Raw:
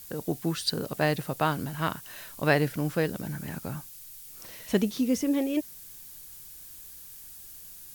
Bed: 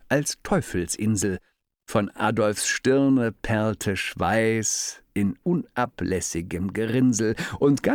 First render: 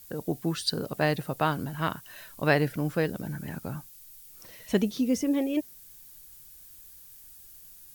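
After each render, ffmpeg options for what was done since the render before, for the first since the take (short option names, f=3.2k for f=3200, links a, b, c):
-af "afftdn=nr=6:nf=-47"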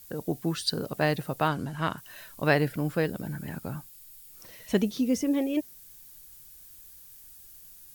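-filter_complex "[0:a]asettb=1/sr,asplit=3[a][b][c];[a]atrim=end=1.484[d];[b]atrim=start=1.48:end=1.98,asetpts=PTS-STARTPTS,afade=t=in:d=0.004:c=qsin,afade=t=out:st=0.496:d=0.004:c=qsin,lowpass=10k[e];[c]atrim=start=1.976[f];[d][e]acrossfade=d=0.004:c1=hsin:c2=qsin[g];[g][f]acrossfade=d=0.004:c1=qsin:c2=hsin,asettb=1/sr,asplit=3[h][i][j];[h]atrim=end=2.574[k];[i]atrim=start=2.57:end=4.33,asetpts=PTS-STARTPTS,afade=t=in:d=0.004:c=qsin,afade=t=out:st=1.756:d=0.004:c=qsin,bandreject=f=6k:w=12[l];[j]atrim=start=4.326[m];[k][l]acrossfade=d=0.004:c1=hsin:c2=qsin[n];[n][m]acrossfade=d=0.004:c1=qsin:c2=hsin"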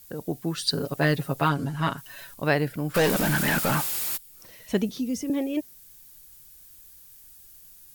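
-filter_complex "[0:a]asettb=1/sr,asplit=3[a][b][c];[a]atrim=end=0.574[d];[b]atrim=start=0.57:end=2.34,asetpts=PTS-STARTPTS,afade=t=in:d=0.004:c=qsin,afade=t=out:st=1.766:d=0.004:c=qsin,aecho=1:1:7.2:1,atrim=end_sample=78057[e];[c]atrim=start=2.336[f];[d][e]acrossfade=d=0.004:c1=hsin:c2=qsin[g];[g][f]acrossfade=d=0.004:c1=qsin:c2=hsin,asplit=3[h][i][j];[h]afade=t=out:st=2.94:d=0.02[k];[i]asplit=2[l][m];[m]highpass=f=720:p=1,volume=36dB,asoftclip=type=tanh:threshold=-14.5dB[n];[l][n]amix=inputs=2:normalize=0,lowpass=f=7.9k:p=1,volume=-6dB,afade=t=in:st=2.94:d=0.02,afade=t=out:st=4.16:d=0.02[o];[j]afade=t=in:st=4.16:d=0.02[p];[k][o][p]amix=inputs=3:normalize=0,asettb=1/sr,asplit=3[q][r][s];[q]atrim=end=4.894[t];[r]atrim=start=4.89:end=5.3,asetpts=PTS-STARTPTS,afade=t=in:d=0.004:c=qsin,afade=t=out:st=0.406:d=0.004:c=qsin,acrossover=split=280|3000[u][v][w];[v]acompressor=threshold=-39dB:ratio=3:attack=3.2:release=140:knee=2.83:detection=peak[x];[u][x][w]amix=inputs=3:normalize=0[y];[s]atrim=start=5.296[z];[t][y]acrossfade=d=0.004:c1=hsin:c2=qsin[aa];[aa][z]acrossfade=d=0.004:c1=qsin:c2=hsin"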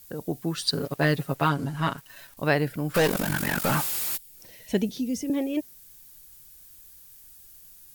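-filter_complex "[0:a]asettb=1/sr,asplit=3[a][b][c];[a]atrim=end=0.614[d];[b]atrim=start=0.61:end=2.37,asetpts=PTS-STARTPTS,afade=t=in:d=0.004:c=qsin,afade=t=out:st=1.756:d=0.004:c=qsin,aeval=exprs='sgn(val(0))*max(abs(val(0))-0.00398,0)':c=same[e];[c]atrim=start=2.366[f];[d][e]acrossfade=d=0.004:c1=hsin:c2=qsin[g];[g][f]acrossfade=d=0.004:c1=qsin:c2=hsin,asettb=1/sr,asplit=3[h][i][j];[h]atrim=end=3.074[k];[i]atrim=start=3.07:end=3.64,asetpts=PTS-STARTPTS,afade=t=in:d=0.004:c=qsin,afade=t=out:st=0.566:d=0.004:c=qsin,tremolo=f=47:d=0.824[l];[j]atrim=start=3.636[m];[k][l]acrossfade=d=0.004:c1=hsin:c2=qsin[n];[n][m]acrossfade=d=0.004:c1=qsin:c2=hsin,asettb=1/sr,asplit=3[o][p][q];[o]atrim=end=4.154[r];[p]atrim=start=4.15:end=5.3,asetpts=PTS-STARTPTS,afade=t=in:d=0.004:c=qsin,afade=t=out:st=1.146:d=0.004:c=qsin,equalizer=f=1.2k:t=o:w=0.37:g=-13[s];[q]atrim=start=5.296[t];[r][s]acrossfade=d=0.004:c1=hsin:c2=qsin[u];[u][t]acrossfade=d=0.004:c1=qsin:c2=hsin"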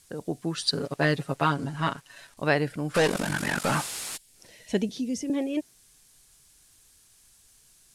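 -af "lowpass=f=10k:w=0.5412,lowpass=f=10k:w=1.3066,lowshelf=f=170:g=-4.5"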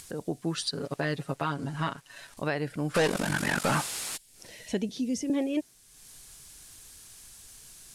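-af "alimiter=limit=-19dB:level=0:latency=1:release=282,acompressor=mode=upward:threshold=-40dB:ratio=2.5"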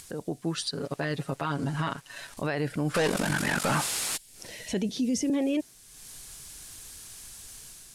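-af "dynaudnorm=f=760:g=3:m=5dB,alimiter=limit=-20.5dB:level=0:latency=1:release=15"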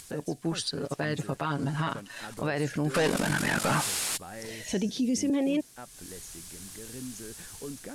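-filter_complex "[1:a]volume=-21dB[a];[0:a][a]amix=inputs=2:normalize=0"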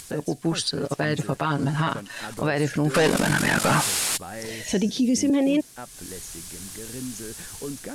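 -af "volume=6dB"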